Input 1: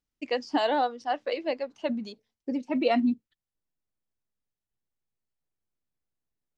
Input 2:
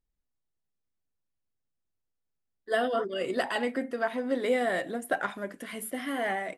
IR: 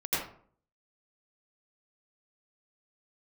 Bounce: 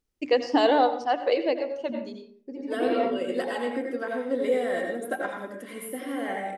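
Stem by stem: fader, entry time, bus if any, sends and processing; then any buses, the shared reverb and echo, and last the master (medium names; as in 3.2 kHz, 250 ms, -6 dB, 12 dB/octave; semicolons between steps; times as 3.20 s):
+2.0 dB, 0.00 s, send -17 dB, hum notches 60/120/180/240/300 Hz; auto duck -19 dB, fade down 1.30 s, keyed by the second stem
-8.0 dB, 0.00 s, send -7 dB, comb 3.8 ms, depth 45%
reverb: on, RT60 0.50 s, pre-delay 78 ms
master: fifteen-band graphic EQ 100 Hz +6 dB, 400 Hz +8 dB, 10 kHz +3 dB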